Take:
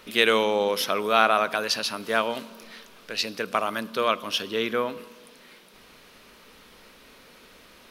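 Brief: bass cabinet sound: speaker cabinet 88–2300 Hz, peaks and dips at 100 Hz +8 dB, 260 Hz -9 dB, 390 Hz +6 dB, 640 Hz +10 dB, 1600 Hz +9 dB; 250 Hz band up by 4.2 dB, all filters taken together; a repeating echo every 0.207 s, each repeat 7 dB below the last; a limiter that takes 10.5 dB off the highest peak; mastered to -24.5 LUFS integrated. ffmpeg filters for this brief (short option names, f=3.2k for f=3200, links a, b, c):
-af "equalizer=f=250:t=o:g=7.5,alimiter=limit=-14dB:level=0:latency=1,highpass=f=88:w=0.5412,highpass=f=88:w=1.3066,equalizer=f=100:t=q:w=4:g=8,equalizer=f=260:t=q:w=4:g=-9,equalizer=f=390:t=q:w=4:g=6,equalizer=f=640:t=q:w=4:g=10,equalizer=f=1.6k:t=q:w=4:g=9,lowpass=f=2.3k:w=0.5412,lowpass=f=2.3k:w=1.3066,aecho=1:1:207|414|621|828|1035:0.447|0.201|0.0905|0.0407|0.0183,volume=-1.5dB"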